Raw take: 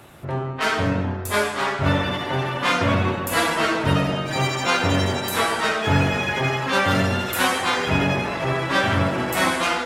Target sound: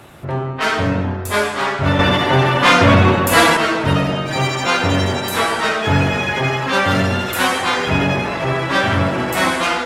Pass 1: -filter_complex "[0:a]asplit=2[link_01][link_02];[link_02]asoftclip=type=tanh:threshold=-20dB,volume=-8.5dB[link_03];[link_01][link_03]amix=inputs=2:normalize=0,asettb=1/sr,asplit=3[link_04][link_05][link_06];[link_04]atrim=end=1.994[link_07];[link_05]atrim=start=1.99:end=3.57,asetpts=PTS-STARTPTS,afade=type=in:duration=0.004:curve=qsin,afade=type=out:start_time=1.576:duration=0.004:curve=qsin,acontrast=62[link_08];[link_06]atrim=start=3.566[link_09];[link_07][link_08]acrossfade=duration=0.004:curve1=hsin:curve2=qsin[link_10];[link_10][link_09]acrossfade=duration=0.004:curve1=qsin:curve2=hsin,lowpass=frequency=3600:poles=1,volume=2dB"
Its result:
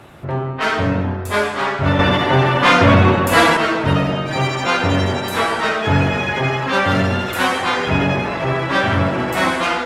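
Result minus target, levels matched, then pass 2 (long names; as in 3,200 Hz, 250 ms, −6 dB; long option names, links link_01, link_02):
8,000 Hz band −4.5 dB
-filter_complex "[0:a]asplit=2[link_01][link_02];[link_02]asoftclip=type=tanh:threshold=-20dB,volume=-8.5dB[link_03];[link_01][link_03]amix=inputs=2:normalize=0,asettb=1/sr,asplit=3[link_04][link_05][link_06];[link_04]atrim=end=1.994[link_07];[link_05]atrim=start=1.99:end=3.57,asetpts=PTS-STARTPTS,afade=type=in:duration=0.004:curve=qsin,afade=type=out:start_time=1.576:duration=0.004:curve=qsin,acontrast=62[link_08];[link_06]atrim=start=3.566[link_09];[link_07][link_08]acrossfade=duration=0.004:curve1=hsin:curve2=qsin[link_10];[link_10][link_09]acrossfade=duration=0.004:curve1=qsin:curve2=hsin,lowpass=frequency=10000:poles=1,volume=2dB"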